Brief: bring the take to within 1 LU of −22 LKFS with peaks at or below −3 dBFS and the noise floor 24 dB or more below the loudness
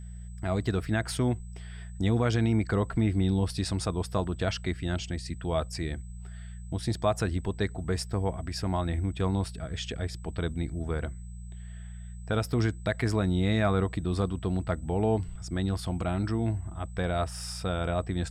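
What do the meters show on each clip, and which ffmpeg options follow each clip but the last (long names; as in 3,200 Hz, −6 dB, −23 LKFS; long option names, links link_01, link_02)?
mains hum 60 Hz; hum harmonics up to 180 Hz; level of the hum −38 dBFS; interfering tone 8,000 Hz; level of the tone −58 dBFS; integrated loudness −30.0 LKFS; sample peak −15.0 dBFS; target loudness −22.0 LKFS
→ -af "bandreject=frequency=60:width_type=h:width=4,bandreject=frequency=120:width_type=h:width=4,bandreject=frequency=180:width_type=h:width=4"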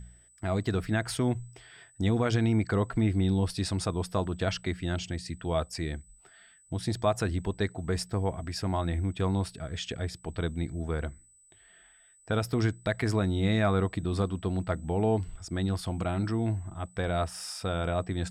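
mains hum none found; interfering tone 8,000 Hz; level of the tone −58 dBFS
→ -af "bandreject=frequency=8000:width=30"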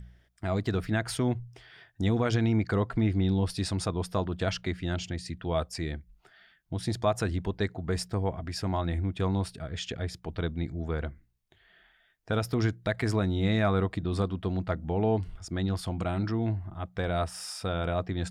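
interfering tone none found; integrated loudness −30.5 LKFS; sample peak −15.0 dBFS; target loudness −22.0 LKFS
→ -af "volume=8.5dB"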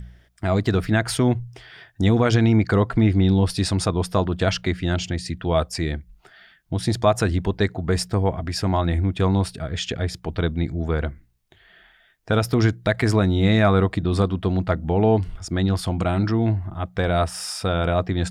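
integrated loudness −22.0 LKFS; sample peak −6.5 dBFS; background noise floor −58 dBFS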